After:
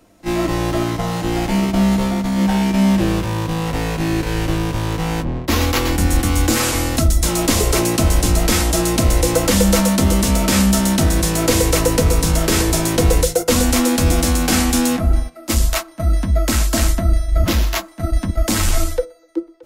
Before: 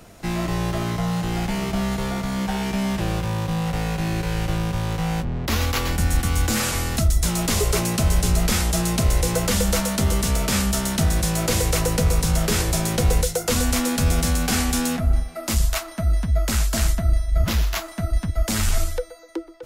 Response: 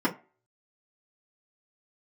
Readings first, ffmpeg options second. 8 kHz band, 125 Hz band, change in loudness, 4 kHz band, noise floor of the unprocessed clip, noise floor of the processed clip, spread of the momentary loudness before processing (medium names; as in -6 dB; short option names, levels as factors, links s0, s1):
+5.0 dB, +3.5 dB, +5.0 dB, +5.0 dB, -38 dBFS, -41 dBFS, 5 LU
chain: -filter_complex "[0:a]agate=range=0.224:threshold=0.0562:ratio=16:detection=peak,asplit=2[s0][s1];[s1]lowpass=1400[s2];[1:a]atrim=start_sample=2205,asetrate=48510,aresample=44100[s3];[s2][s3]afir=irnorm=-1:irlink=0,volume=0.141[s4];[s0][s4]amix=inputs=2:normalize=0,volume=1.78"